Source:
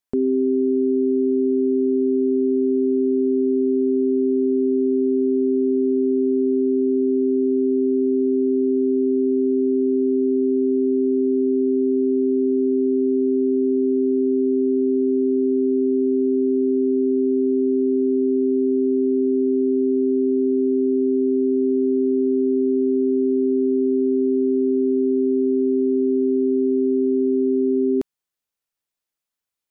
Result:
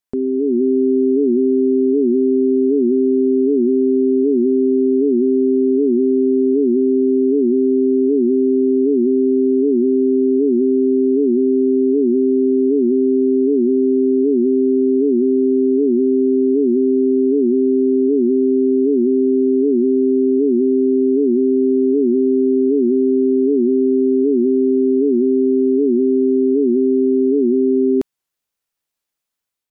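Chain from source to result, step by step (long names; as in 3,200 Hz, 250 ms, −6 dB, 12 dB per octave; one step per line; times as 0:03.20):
automatic gain control gain up to 4.5 dB
wow of a warped record 78 rpm, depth 160 cents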